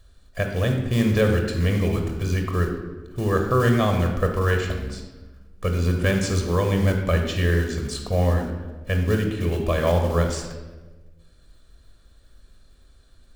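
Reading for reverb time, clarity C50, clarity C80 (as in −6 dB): 1.2 s, 5.0 dB, 7.0 dB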